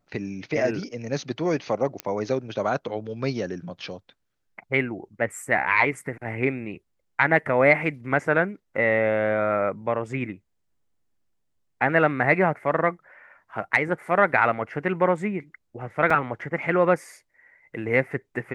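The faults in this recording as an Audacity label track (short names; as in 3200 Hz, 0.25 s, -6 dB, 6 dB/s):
2.000000	2.000000	pop -13 dBFS
16.100000	16.100000	gap 3.9 ms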